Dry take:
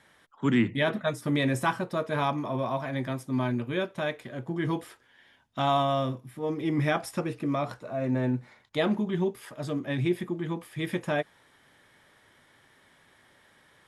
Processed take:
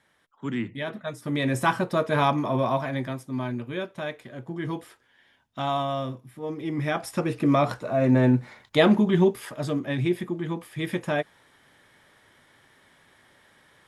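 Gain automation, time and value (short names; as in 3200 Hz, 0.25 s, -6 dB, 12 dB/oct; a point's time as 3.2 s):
1 s -6 dB
1.78 s +5.5 dB
2.73 s +5.5 dB
3.26 s -2 dB
6.82 s -2 dB
7.47 s +8 dB
9.28 s +8 dB
9.96 s +2 dB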